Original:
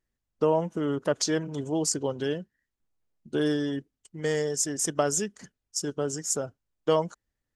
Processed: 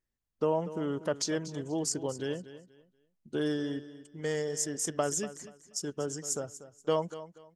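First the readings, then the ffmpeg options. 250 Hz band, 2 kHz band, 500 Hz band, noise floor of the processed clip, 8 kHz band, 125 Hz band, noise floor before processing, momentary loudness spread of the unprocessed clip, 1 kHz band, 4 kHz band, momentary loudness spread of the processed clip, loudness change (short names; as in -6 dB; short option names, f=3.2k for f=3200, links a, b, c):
-5.0 dB, -5.0 dB, -5.0 dB, -80 dBFS, -5.0 dB, -5.0 dB, -85 dBFS, 9 LU, -5.0 dB, -5.0 dB, 10 LU, -5.0 dB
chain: -af "aecho=1:1:240|480|720:0.188|0.0471|0.0118,volume=-5dB"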